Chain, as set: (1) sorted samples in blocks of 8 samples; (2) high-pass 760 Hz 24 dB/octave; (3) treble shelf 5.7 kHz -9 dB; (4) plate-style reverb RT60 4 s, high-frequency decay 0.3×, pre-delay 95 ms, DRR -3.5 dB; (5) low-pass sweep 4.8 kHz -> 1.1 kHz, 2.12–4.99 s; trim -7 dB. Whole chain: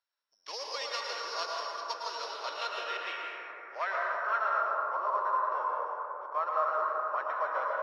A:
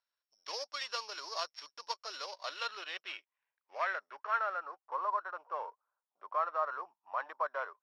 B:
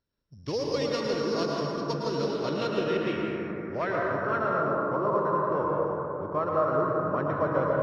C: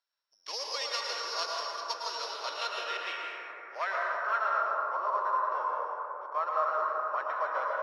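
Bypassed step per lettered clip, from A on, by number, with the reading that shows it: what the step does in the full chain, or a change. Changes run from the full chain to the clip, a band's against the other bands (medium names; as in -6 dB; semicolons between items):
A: 4, momentary loudness spread change +2 LU; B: 2, 500 Hz band +11.5 dB; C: 3, 4 kHz band +3.0 dB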